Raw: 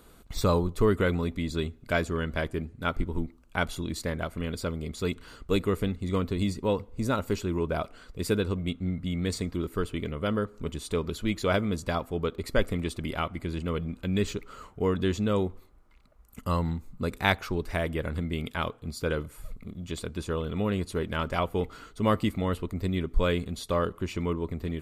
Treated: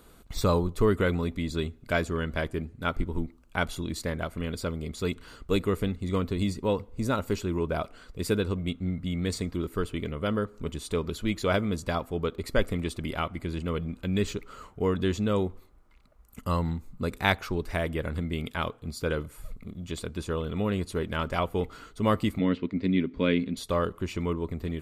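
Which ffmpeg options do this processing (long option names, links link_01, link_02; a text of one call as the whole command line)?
ffmpeg -i in.wav -filter_complex "[0:a]asettb=1/sr,asplit=3[link_01][link_02][link_03];[link_01]atrim=end=22.394[link_04];[link_02]atrim=start=22.39:end=23.57,asetpts=PTS-STARTPTS,afade=type=in:duration=0.004:curve=qsin,afade=type=out:start_time=1.176:duration=0.004:curve=qsin,highpass=150,equalizer=frequency=190:width_type=q:width=4:gain=5,equalizer=frequency=270:width_type=q:width=4:gain=10,equalizer=frequency=770:width_type=q:width=4:gain=-10,equalizer=frequency=1200:width_type=q:width=4:gain=-6,equalizer=frequency=2200:width_type=q:width=4:gain=6,lowpass=frequency=4800:width=0.5412,lowpass=frequency=4800:width=1.3066[link_05];[link_03]atrim=start=23.566[link_06];[link_04][link_05]acrossfade=duration=0.004:curve1=hsin:curve2=qsin[link_07];[link_07][link_06]acrossfade=duration=0.004:curve1=qsin:curve2=hsin" out.wav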